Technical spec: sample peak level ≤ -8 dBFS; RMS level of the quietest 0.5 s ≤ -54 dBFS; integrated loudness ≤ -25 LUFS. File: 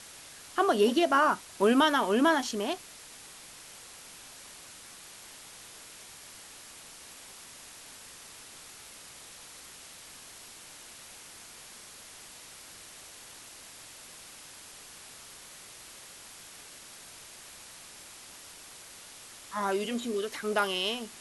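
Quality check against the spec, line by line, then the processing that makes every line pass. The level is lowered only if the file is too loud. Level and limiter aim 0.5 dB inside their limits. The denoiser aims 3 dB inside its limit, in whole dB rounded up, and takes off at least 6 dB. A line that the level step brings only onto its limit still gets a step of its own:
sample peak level -13.0 dBFS: pass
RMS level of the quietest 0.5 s -49 dBFS: fail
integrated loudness -27.5 LUFS: pass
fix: noise reduction 8 dB, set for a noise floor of -49 dBFS

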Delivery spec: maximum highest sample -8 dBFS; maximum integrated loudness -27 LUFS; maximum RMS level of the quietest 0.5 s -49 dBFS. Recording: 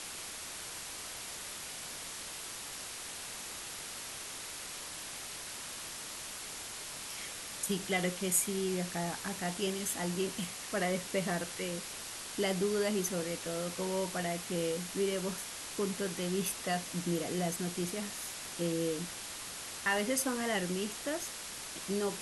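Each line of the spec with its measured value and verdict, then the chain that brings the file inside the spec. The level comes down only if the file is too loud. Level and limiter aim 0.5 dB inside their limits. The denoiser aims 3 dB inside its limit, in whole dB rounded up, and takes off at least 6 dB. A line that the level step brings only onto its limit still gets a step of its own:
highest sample -15.5 dBFS: pass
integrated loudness -36.0 LUFS: pass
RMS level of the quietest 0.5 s -44 dBFS: fail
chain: noise reduction 8 dB, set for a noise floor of -44 dBFS

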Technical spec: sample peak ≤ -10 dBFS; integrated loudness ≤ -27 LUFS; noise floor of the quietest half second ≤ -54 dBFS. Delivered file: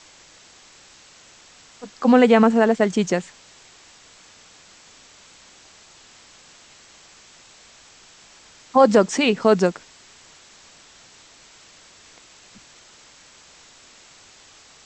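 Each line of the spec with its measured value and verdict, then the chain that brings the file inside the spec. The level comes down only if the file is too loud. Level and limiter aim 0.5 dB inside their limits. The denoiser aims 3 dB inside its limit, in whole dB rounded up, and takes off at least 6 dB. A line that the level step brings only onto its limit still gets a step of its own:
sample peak -4.0 dBFS: fail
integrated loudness -17.5 LUFS: fail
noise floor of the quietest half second -50 dBFS: fail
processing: trim -10 dB

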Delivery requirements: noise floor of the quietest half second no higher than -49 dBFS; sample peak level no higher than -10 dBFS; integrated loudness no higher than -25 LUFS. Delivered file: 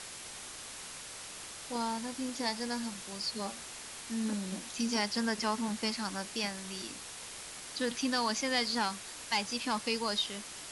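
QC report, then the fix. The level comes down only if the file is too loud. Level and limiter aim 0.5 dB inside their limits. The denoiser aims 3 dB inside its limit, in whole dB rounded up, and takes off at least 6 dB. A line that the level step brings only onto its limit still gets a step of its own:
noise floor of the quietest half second -46 dBFS: fail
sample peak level -18.5 dBFS: pass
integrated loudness -35.0 LUFS: pass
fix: noise reduction 6 dB, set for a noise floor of -46 dBFS

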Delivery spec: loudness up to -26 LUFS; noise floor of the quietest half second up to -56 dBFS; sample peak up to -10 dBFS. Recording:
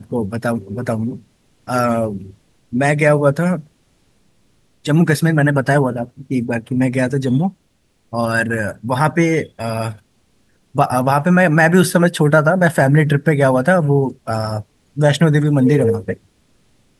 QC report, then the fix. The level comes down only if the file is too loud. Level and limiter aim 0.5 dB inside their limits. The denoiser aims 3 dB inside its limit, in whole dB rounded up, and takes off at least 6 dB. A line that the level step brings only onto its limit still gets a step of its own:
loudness -16.5 LUFS: fail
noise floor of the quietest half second -61 dBFS: pass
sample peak -1.5 dBFS: fail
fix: trim -10 dB

